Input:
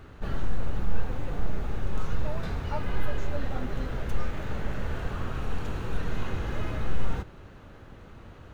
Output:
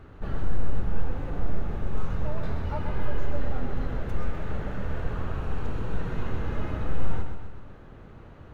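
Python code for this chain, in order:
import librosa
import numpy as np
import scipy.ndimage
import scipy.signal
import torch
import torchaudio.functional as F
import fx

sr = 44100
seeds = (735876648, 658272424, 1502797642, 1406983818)

p1 = fx.high_shelf(x, sr, hz=2700.0, db=-10.0)
y = p1 + fx.echo_feedback(p1, sr, ms=127, feedback_pct=50, wet_db=-6.5, dry=0)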